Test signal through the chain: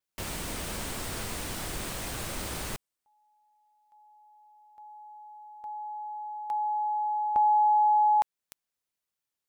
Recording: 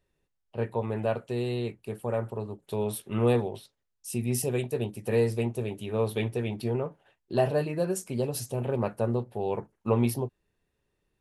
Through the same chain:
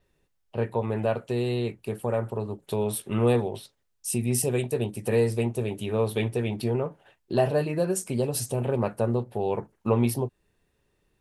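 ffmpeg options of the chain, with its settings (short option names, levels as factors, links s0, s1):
-filter_complex "[0:a]asplit=2[s0][s1];[s1]acompressor=threshold=0.0178:ratio=6,volume=1.06[s2];[s0][s2]amix=inputs=2:normalize=0,adynamicequalizer=threshold=0.00178:dfrequency=8600:dqfactor=4.8:tfrequency=8600:tqfactor=4.8:attack=5:release=100:ratio=0.375:range=3:mode=boostabove:tftype=bell"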